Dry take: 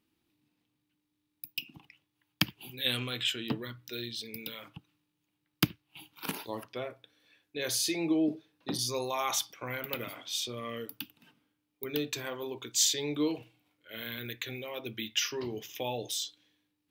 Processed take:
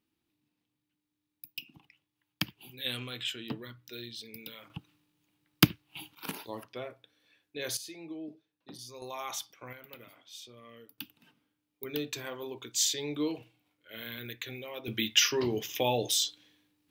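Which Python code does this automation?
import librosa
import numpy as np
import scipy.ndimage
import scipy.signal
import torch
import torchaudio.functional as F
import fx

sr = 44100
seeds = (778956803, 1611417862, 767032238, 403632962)

y = fx.gain(x, sr, db=fx.steps((0.0, -4.5), (4.7, 5.5), (6.15, -2.5), (7.77, -14.0), (9.02, -7.0), (9.73, -13.5), (10.98, -2.0), (14.88, 6.5)))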